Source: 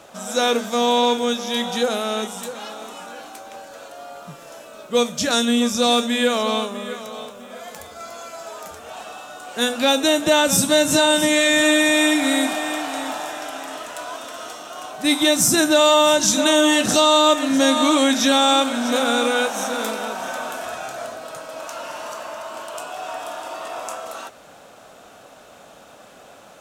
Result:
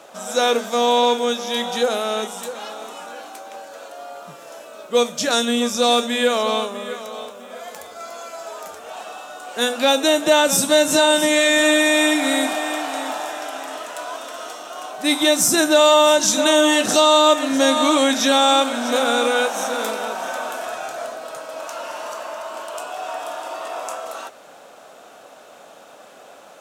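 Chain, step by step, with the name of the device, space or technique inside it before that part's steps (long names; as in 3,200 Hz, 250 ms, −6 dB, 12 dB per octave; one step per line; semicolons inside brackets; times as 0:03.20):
filter by subtraction (in parallel: low-pass filter 490 Hz 12 dB per octave + polarity inversion)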